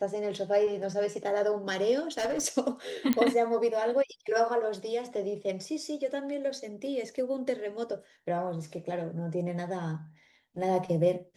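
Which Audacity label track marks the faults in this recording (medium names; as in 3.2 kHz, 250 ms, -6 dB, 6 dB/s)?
1.990000	2.430000	clipped -26 dBFS
3.130000	3.130000	pop -12 dBFS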